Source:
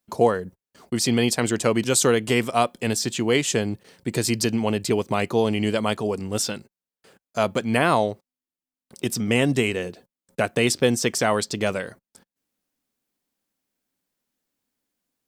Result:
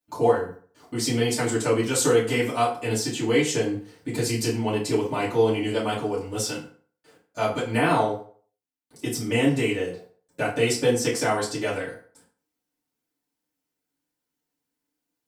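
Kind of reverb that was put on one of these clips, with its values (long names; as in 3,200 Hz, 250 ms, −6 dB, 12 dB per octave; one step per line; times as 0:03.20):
feedback delay network reverb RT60 0.47 s, low-frequency decay 0.85×, high-frequency decay 0.7×, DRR −9 dB
level −11.5 dB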